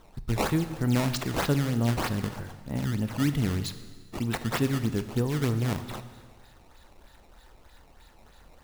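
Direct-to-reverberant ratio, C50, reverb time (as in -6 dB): 10.0 dB, 11.5 dB, 1.6 s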